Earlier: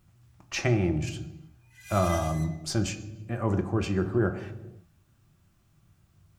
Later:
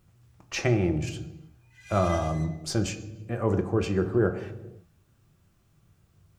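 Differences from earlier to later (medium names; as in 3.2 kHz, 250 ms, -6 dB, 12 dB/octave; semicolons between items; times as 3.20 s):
background: add distance through air 68 m; master: add peaking EQ 460 Hz +10 dB 0.31 oct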